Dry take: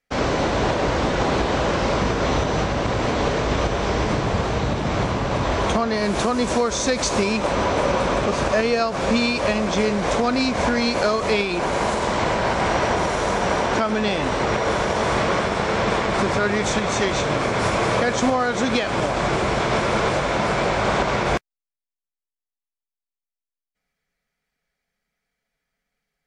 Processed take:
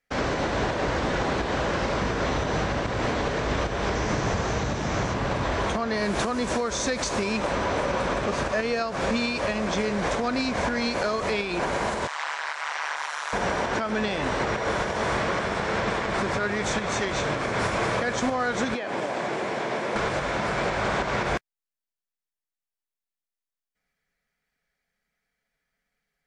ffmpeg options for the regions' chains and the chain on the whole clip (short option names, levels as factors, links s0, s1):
-filter_complex "[0:a]asettb=1/sr,asplit=3[s0][s1][s2];[s0]atrim=end=3.954[s3];[s1]atrim=start=3.95:end=5.14,asetpts=PTS-STARTPTS,afade=t=in:d=0.004:c=qsin,afade=t=out:st=1.186:d=0.004:c=qsin,acrossover=split=3400[s4][s5];[s5]acompressor=threshold=0.00631:ratio=4:attack=1:release=60[s6];[s4][s6]amix=inputs=2:normalize=0,equalizer=f=6300:w=1.5:g=13[s7];[s2]atrim=start=5.136[s8];[s3][s7]acrossfade=d=0.004:c1=hsin:c2=qsin[s9];[s9][s8]acrossfade=d=0.004:c1=qsin:c2=hsin,asettb=1/sr,asplit=3[s10][s11][s12];[s10]atrim=end=12.074[s13];[s11]atrim=start=12.07:end=13.33,asetpts=PTS-STARTPTS,afade=t=in:d=0.004:c=qsin,afade=t=out:st=1.256:d=0.004:c=qsin,highpass=f=940:w=0.5412,highpass=f=940:w=1.3066,tremolo=f=150:d=1[s14];[s12]atrim=start=13.326[s15];[s13][s14]acrossfade=d=0.004:c1=hsin:c2=qsin[s16];[s16][s15]acrossfade=d=0.004:c1=qsin:c2=hsin,asettb=1/sr,asplit=3[s17][s18][s19];[s17]atrim=end=18.744[s20];[s18]atrim=start=18.74:end=19.96,asetpts=PTS-STARTPTS,afade=t=in:d=0.004:c=qsin,afade=t=out:st=1.216:d=0.004:c=qsin,equalizer=f=1300:w=2.6:g=-5.5,acrossover=split=1000|2200[s21][s22][s23];[s21]acompressor=threshold=0.0631:ratio=4[s24];[s22]acompressor=threshold=0.0178:ratio=4[s25];[s23]acompressor=threshold=0.00794:ratio=4[s26];[s24][s25][s26]amix=inputs=3:normalize=0,highpass=220[s27];[s19]atrim=start=19.956[s28];[s20][s27]acrossfade=d=0.004:c1=hsin:c2=qsin[s29];[s29][s28]acrossfade=d=0.004:c1=qsin:c2=hsin,equalizer=f=1700:t=o:w=0.58:g=4,alimiter=limit=0.2:level=0:latency=1:release=293,volume=0.794"